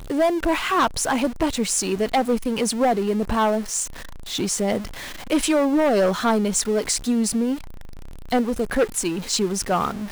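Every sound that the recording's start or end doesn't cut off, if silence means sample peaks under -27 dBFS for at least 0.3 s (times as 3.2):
4.3–4.86
5.31–7.55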